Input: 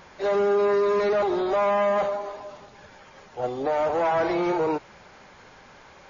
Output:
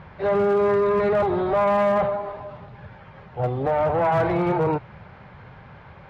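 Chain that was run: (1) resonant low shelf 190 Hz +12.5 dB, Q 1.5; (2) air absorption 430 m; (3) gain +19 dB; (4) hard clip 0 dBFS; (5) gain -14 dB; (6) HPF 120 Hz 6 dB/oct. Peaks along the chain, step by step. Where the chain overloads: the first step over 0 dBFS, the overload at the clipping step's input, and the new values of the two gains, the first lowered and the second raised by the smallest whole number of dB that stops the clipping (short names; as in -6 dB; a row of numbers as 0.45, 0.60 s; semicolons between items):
-12.5, -13.5, +5.5, 0.0, -14.0, -12.0 dBFS; step 3, 5.5 dB; step 3 +13 dB, step 5 -8 dB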